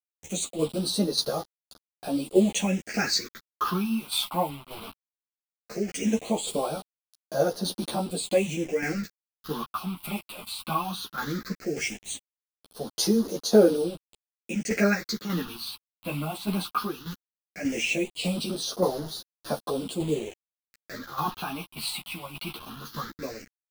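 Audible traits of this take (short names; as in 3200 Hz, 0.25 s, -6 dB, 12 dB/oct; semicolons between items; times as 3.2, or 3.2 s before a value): a quantiser's noise floor 6-bit, dither none; phasing stages 6, 0.17 Hz, lowest notch 450–2300 Hz; tremolo saw down 1.7 Hz, depth 60%; a shimmering, thickened sound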